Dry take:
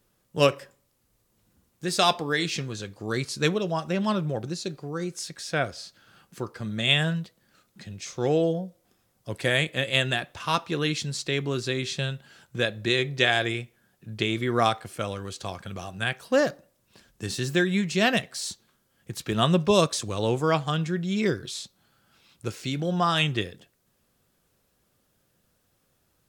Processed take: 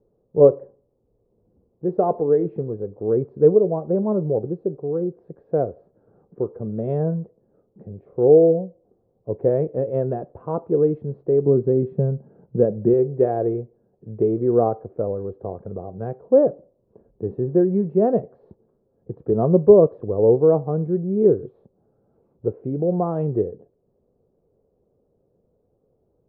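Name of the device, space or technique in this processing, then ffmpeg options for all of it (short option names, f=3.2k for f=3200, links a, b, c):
under water: -filter_complex "[0:a]lowpass=f=750:w=0.5412,lowpass=f=750:w=1.3066,equalizer=f=440:t=o:w=0.57:g=12,asettb=1/sr,asplit=3[a][b][c];[a]atrim=end=11.464[d];[b]atrim=start=11.46:end=12.94,asetpts=PTS-STARTPTS,afade=t=in:d=0.004:c=qsin,afade=t=out:st=1.476:d=0.004:c=qsin,equalizer=f=180:t=o:w=1:g=10.5[e];[c]atrim=start=12.936[f];[d][e]acrossfade=d=0.004:c1=hsin:c2=qsin[g];[g][f]acrossfade=d=0.004:c1=qsin:c2=hsin,volume=2.5dB"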